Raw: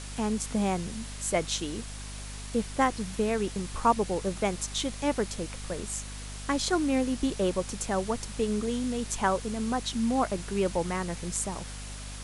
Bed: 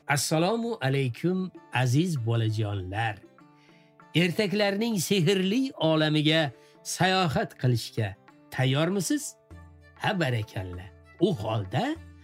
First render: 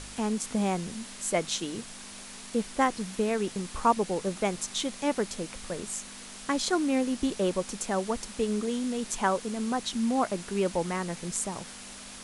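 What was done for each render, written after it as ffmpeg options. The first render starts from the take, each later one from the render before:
-af "bandreject=f=50:t=h:w=4,bandreject=f=100:t=h:w=4,bandreject=f=150:t=h:w=4"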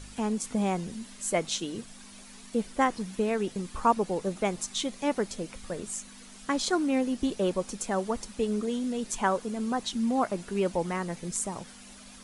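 -af "afftdn=nr=9:nf=-45"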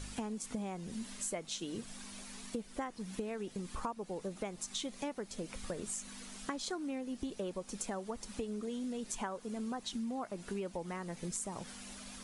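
-af "acompressor=threshold=-36dB:ratio=12"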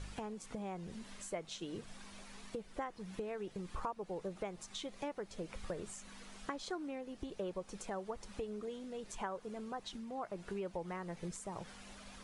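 -af "lowpass=f=2.5k:p=1,equalizer=f=240:w=3.4:g=-10"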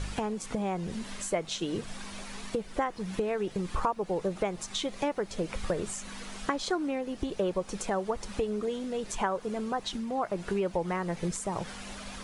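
-af "volume=11.5dB"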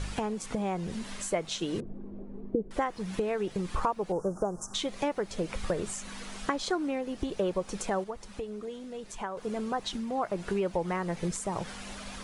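-filter_complex "[0:a]asettb=1/sr,asplit=3[a][b][c];[a]atrim=end=1.804[d];[b]atrim=start=1.8:end=2.71,asetpts=PTS-STARTPTS,afade=t=in:d=0.004:c=qsin,afade=t=out:st=0.906:d=0.004:c=qsin,lowpass=f=360:t=q:w=2.9[e];[c]atrim=start=2.706[f];[d][e]acrossfade=d=0.004:c1=hsin:c2=qsin[g];[g][f]acrossfade=d=0.004:c1=qsin:c2=hsin,asettb=1/sr,asplit=3[h][i][j];[h]atrim=end=4.124[k];[i]atrim=start=4.12:end=4.74,asetpts=PTS-STARTPTS,afade=t=in:d=0.004:c=qsin,afade=t=out:st=0.616:d=0.004:c=qsin,asuperstop=centerf=2900:order=12:qfactor=0.71[l];[j]atrim=start=4.736[m];[k][l]acrossfade=d=0.004:c1=hsin:c2=qsin[n];[n][m]acrossfade=d=0.004:c1=qsin:c2=hsin,asplit=3[o][p][q];[o]atrim=end=8.042[r];[p]atrim=start=8.038:end=9.372,asetpts=PTS-STARTPTS,volume=-7dB[s];[q]atrim=start=9.368[t];[r][s]acrossfade=d=0.004:c1=hsin:c2=hsin[u];[u][t]acrossfade=d=0.004:c1=hsin:c2=hsin"

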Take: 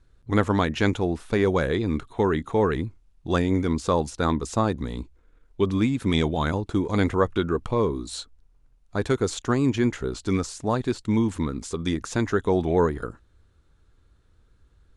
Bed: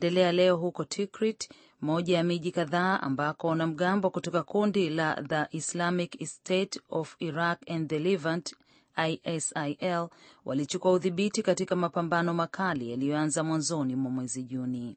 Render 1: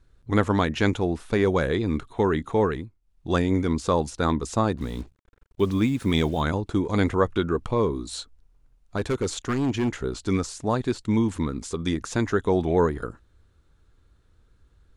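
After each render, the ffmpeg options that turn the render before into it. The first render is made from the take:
-filter_complex "[0:a]asettb=1/sr,asplit=3[a][b][c];[a]atrim=end=4.774[d];[b]atrim=start=4.77:end=6.41,asetpts=PTS-STARTPTS,afade=t=in:d=0.004:c=qsin,afade=t=out:st=1.636:d=0.004:c=qsin,acrusher=bits=7:mix=0:aa=0.5[e];[c]atrim=start=6.406[f];[d][e]acrossfade=d=0.004:c1=hsin:c2=qsin[g];[g][f]acrossfade=d=0.004:c1=qsin:c2=hsin,asettb=1/sr,asplit=3[h][i][j];[h]atrim=end=8.974[k];[i]atrim=start=8.97:end=9.96,asetpts=PTS-STARTPTS,afade=t=in:d=0.004:c=qsin,afade=t=out:st=0.986:d=0.004:c=qsin,asoftclip=type=hard:threshold=-20dB[l];[j]atrim=start=9.956[m];[k][l]acrossfade=d=0.004:c1=hsin:c2=qsin[n];[n][m]acrossfade=d=0.004:c1=qsin:c2=hsin,asplit=3[o][p][q];[o]atrim=end=2.91,asetpts=PTS-STARTPTS,afade=t=out:st=2.62:d=0.29:silence=0.199526[r];[p]atrim=start=2.91:end=3.01,asetpts=PTS-STARTPTS,volume=-14dB[s];[q]atrim=start=3.01,asetpts=PTS-STARTPTS,afade=t=in:d=0.29:silence=0.199526[t];[r][s][t]concat=n=3:v=0:a=1"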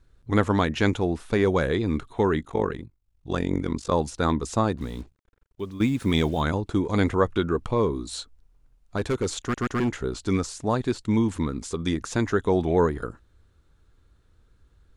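-filter_complex "[0:a]asplit=3[a][b][c];[a]afade=t=out:st=2.39:d=0.02[d];[b]tremolo=f=47:d=0.889,afade=t=in:st=2.39:d=0.02,afade=t=out:st=3.91:d=0.02[e];[c]afade=t=in:st=3.91:d=0.02[f];[d][e][f]amix=inputs=3:normalize=0,asplit=5[g][h][i][j][k];[g]atrim=end=5.8,asetpts=PTS-STARTPTS,afade=t=out:st=4.59:d=1.21:silence=0.199526[l];[h]atrim=start=5.8:end=9.542,asetpts=PTS-STARTPTS,afade=t=in:d=0.004:c=hsin:silence=0.199526[m];[i]atrim=start=9.408:end=9.542[n];[j]atrim=start=9.408:end=9.542[o];[k]atrim=start=9.798[p];[l][m]concat=n=2:v=0:a=1[q];[q][n]acrossfade=d=0.004:c1=hsin:c2=hsin[r];[r][o]acrossfade=d=0.004:c1=hsin:c2=hsin[s];[s][p]acrossfade=d=0.004:c1=hsin:c2=hsin"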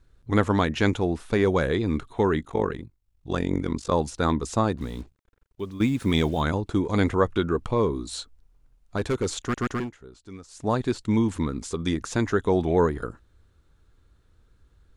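-filter_complex "[0:a]asplit=3[a][b][c];[a]atrim=end=9.91,asetpts=PTS-STARTPTS,afade=t=out:st=9.72:d=0.19:silence=0.133352[d];[b]atrim=start=9.91:end=10.48,asetpts=PTS-STARTPTS,volume=-17.5dB[e];[c]atrim=start=10.48,asetpts=PTS-STARTPTS,afade=t=in:d=0.19:silence=0.133352[f];[d][e][f]concat=n=3:v=0:a=1"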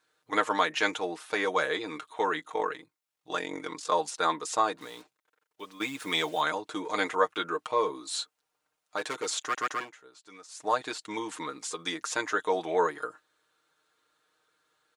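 -af "highpass=680,aecho=1:1:6.5:0.69"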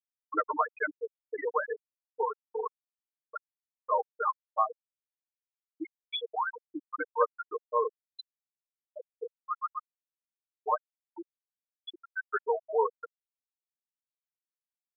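-af "afftfilt=real='re*gte(hypot(re,im),0.224)':imag='im*gte(hypot(re,im),0.224)':win_size=1024:overlap=0.75"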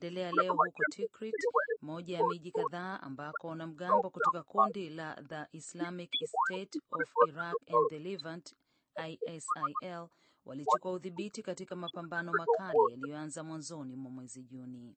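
-filter_complex "[1:a]volume=-14dB[a];[0:a][a]amix=inputs=2:normalize=0"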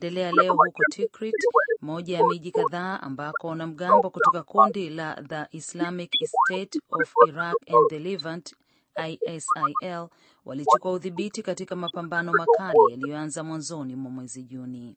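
-af "volume=10.5dB"

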